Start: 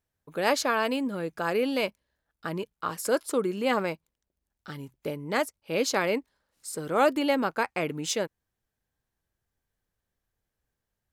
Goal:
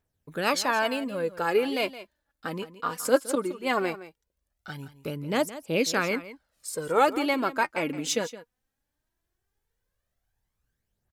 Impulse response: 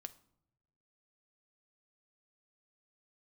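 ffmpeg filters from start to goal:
-filter_complex "[0:a]asettb=1/sr,asplit=3[s0][s1][s2];[s0]atrim=end=3.354[s3];[s1]atrim=start=3.35:end=3.75,asetpts=PTS-STARTPTS,afade=t=in:d=0.004:c=qsin,afade=t=out:st=0.396:d=0.004:c=qsin,agate=range=0.0224:threshold=0.0708:ratio=3:detection=peak[s4];[s2]atrim=start=3.746[s5];[s3][s4]acrossfade=d=0.004:c1=hsin:c2=qsin[s6];[s6][s5]acrossfade=d=0.004:c1=qsin:c2=hsin,aphaser=in_gain=1:out_gain=1:delay=4.3:decay=0.52:speed=0.18:type=triangular,aecho=1:1:167:0.178"

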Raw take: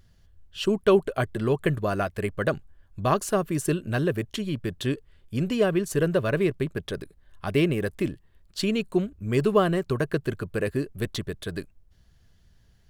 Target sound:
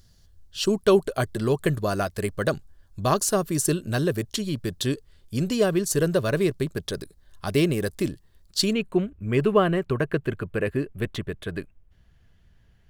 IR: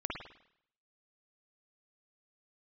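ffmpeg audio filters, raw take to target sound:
-af "asetnsamples=n=441:p=0,asendcmd='8.73 highshelf g -6',highshelf=f=3500:t=q:w=1.5:g=7,volume=1.12"

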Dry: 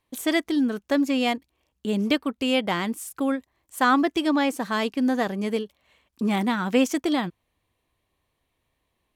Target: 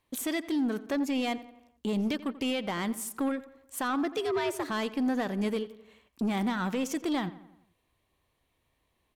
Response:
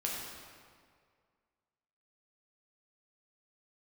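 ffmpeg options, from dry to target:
-filter_complex "[0:a]alimiter=limit=0.106:level=0:latency=1:release=208,asettb=1/sr,asplit=3[s0][s1][s2];[s0]atrim=end=4.114[s3];[s1]atrim=start=4.11:end=4.7,asetpts=PTS-STARTPTS,afade=t=in:d=0.004:c=qsin,afade=t=out:st=0.586:d=0.004:c=qsin,afreqshift=100[s4];[s2]atrim=start=4.696[s5];[s3][s4]acrossfade=d=0.004:c1=hsin:c2=qsin[s6];[s6][s5]acrossfade=d=0.004:c1=qsin:c2=hsin,asoftclip=type=tanh:threshold=0.0708,asplit=2[s7][s8];[s8]adelay=87,lowpass=f=3100:p=1,volume=0.158,asplit=2[s9][s10];[s10]adelay=87,lowpass=f=3100:p=1,volume=0.53,asplit=2[s11][s12];[s12]adelay=87,lowpass=f=3100:p=1,volume=0.53,asplit=2[s13][s14];[s14]adelay=87,lowpass=f=3100:p=1,volume=0.53,asplit=2[s15][s16];[s16]adelay=87,lowpass=f=3100:p=1,volume=0.53[s17];[s7][s9][s11][s13][s15][s17]amix=inputs=6:normalize=0"

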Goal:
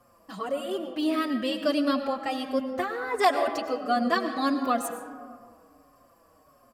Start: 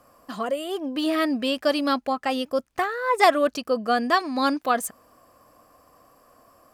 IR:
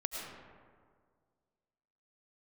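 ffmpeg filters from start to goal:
-filter_complex "[0:a]asplit=2[s0][s1];[1:a]atrim=start_sample=2205,lowshelf=f=300:g=7.5[s2];[s1][s2]afir=irnorm=-1:irlink=0,volume=0.668[s3];[s0][s3]amix=inputs=2:normalize=0,asplit=2[s4][s5];[s5]adelay=5.2,afreqshift=-1.5[s6];[s4][s6]amix=inputs=2:normalize=1,volume=0.501"

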